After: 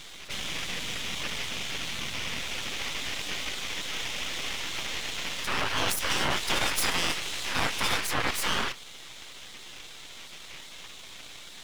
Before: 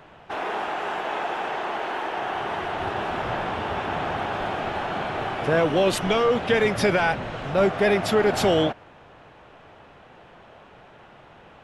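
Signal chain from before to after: spectral gate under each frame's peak -20 dB weak; 5.89–8.01 s: treble shelf 4.7 kHz +10.5 dB; half-wave rectifier; level flattener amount 50%; trim +6.5 dB

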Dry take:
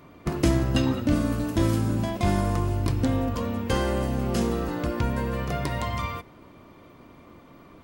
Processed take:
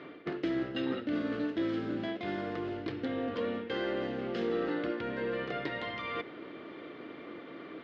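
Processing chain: peaking EQ 2.3 kHz +11.5 dB 2.2 oct; reverse; compression 12:1, threshold -31 dBFS, peak gain reduction 17.5 dB; reverse; cabinet simulation 200–3900 Hz, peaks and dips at 320 Hz +8 dB, 450 Hz +8 dB, 1 kHz -10 dB, 2.5 kHz -7 dB

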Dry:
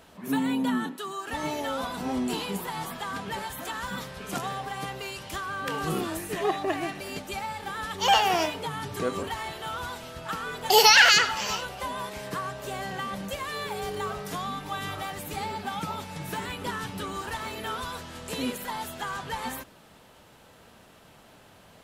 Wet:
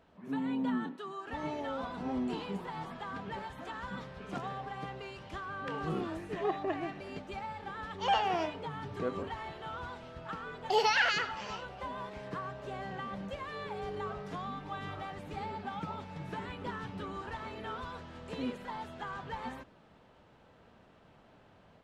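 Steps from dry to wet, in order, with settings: level rider gain up to 4 dB; tape spacing loss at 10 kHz 24 dB; trim -8.5 dB

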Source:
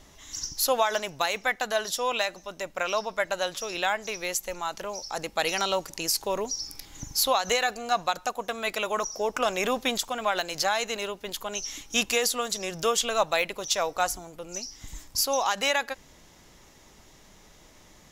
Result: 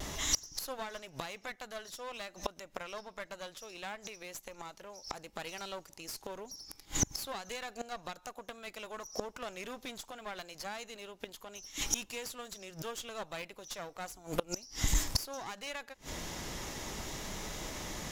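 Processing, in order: one-sided clip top -33 dBFS; vibrato 0.59 Hz 14 cents; inverted gate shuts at -28 dBFS, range -27 dB; trim +13 dB

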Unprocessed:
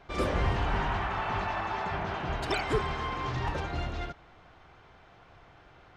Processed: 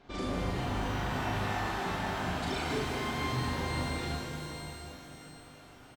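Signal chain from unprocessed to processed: graphic EQ 250/4000/8000 Hz +11/+5/+5 dB; compression, threshold -28 dBFS, peak gain reduction 9 dB; doubling 39 ms -3 dB; pitch-shifted reverb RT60 3.1 s, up +12 st, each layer -8 dB, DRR -2 dB; trim -7.5 dB

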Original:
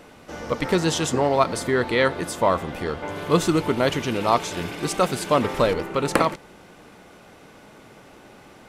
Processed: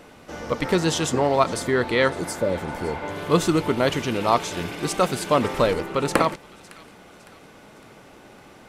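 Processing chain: spectral replace 2.19–3.00 s, 610–4200 Hz; on a send: feedback echo behind a high-pass 558 ms, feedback 46%, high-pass 1.9 kHz, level -18.5 dB

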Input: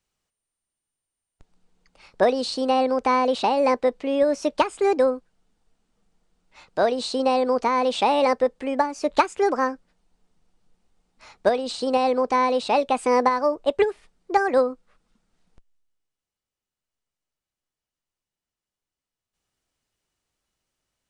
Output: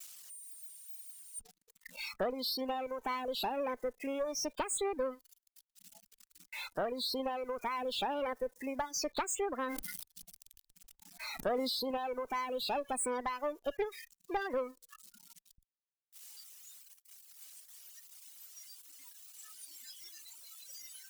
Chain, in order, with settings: zero-crossing glitches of -14 dBFS; spectral noise reduction 20 dB; valve stage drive 14 dB, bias 0.5; compression 2:1, threshold -28 dBFS, peak gain reduction 6.5 dB; reverb removal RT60 1.9 s; gate -53 dBFS, range -43 dB; 9.64–11.91 s: decay stretcher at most 26 dB/s; trim -6.5 dB

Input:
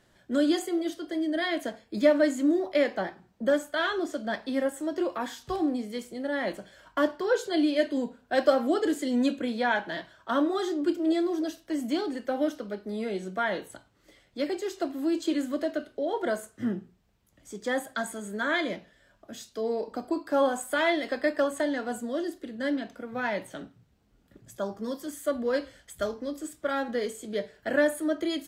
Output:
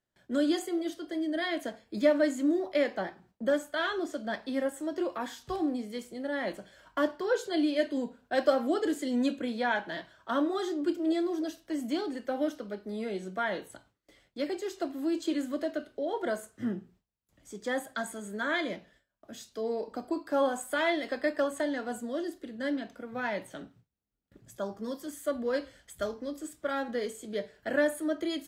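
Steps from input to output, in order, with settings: gate with hold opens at -50 dBFS; trim -3 dB

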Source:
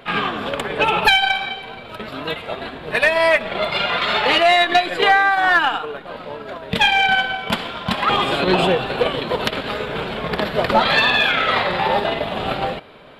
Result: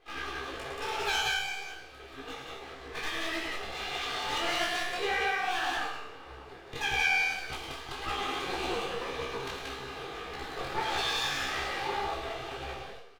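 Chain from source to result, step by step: comb filter that takes the minimum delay 2.5 ms; feedback comb 67 Hz, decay 0.71 s, harmonics all, mix 90%; loudspeakers at several distances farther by 37 m -7 dB, 62 m -2 dB; detune thickener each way 60 cents; trim -1.5 dB

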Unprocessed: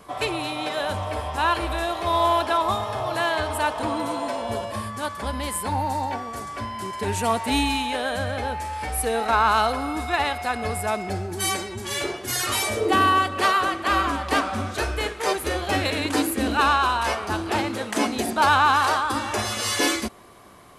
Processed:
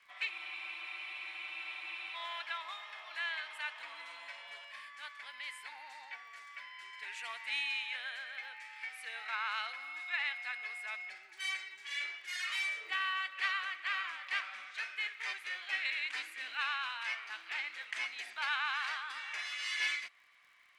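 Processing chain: ladder band-pass 2.4 kHz, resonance 55%; crackle 49 per s -57 dBFS; spectral freeze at 0.33 s, 1.81 s

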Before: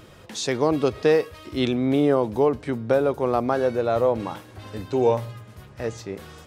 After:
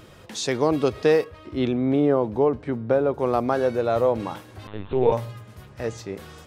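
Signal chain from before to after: 1.24–3.19 s: low-pass 1.6 kHz 6 dB/octave; 4.67–5.12 s: LPC vocoder at 8 kHz pitch kept

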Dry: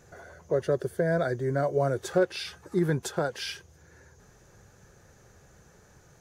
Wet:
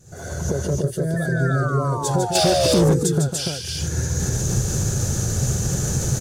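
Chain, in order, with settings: recorder AGC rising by 69 dB/s; vibrato 1.7 Hz 21 cents; 1.16–2.94 s: painted sound fall 410–1800 Hz -24 dBFS; ten-band graphic EQ 125 Hz +7 dB, 500 Hz -4 dB, 1 kHz -8 dB, 2 kHz -10 dB, 8 kHz +8 dB; on a send: loudspeakers at several distances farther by 52 m -6 dB, 100 m -2 dB; 2.35–2.94 s: on the sum: waveshaping leveller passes 2; trim +2 dB; SBC 192 kbps 44.1 kHz

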